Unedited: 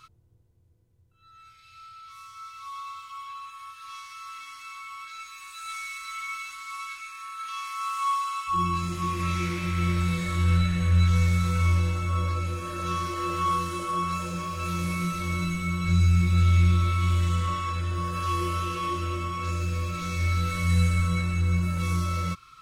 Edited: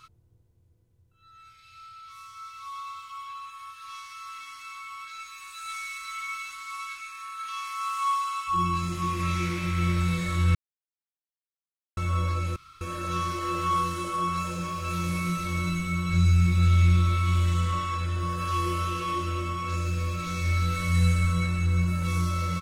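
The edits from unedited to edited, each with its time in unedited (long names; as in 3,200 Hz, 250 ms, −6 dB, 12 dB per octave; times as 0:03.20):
0:10.55–0:11.97: silence
0:12.56: splice in room tone 0.25 s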